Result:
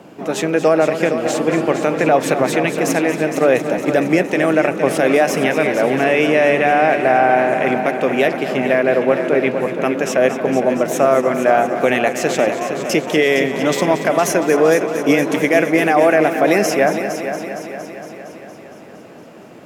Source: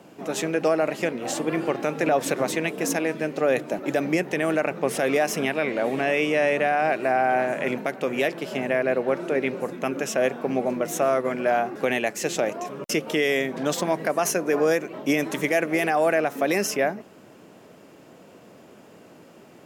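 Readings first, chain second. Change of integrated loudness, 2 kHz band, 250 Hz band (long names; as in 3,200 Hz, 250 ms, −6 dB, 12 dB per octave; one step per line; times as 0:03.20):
+8.5 dB, +8.0 dB, +9.0 dB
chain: high-shelf EQ 4,000 Hz −6 dB
on a send: echo machine with several playback heads 231 ms, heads first and second, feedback 60%, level −12 dB
on the sum: level +8 dB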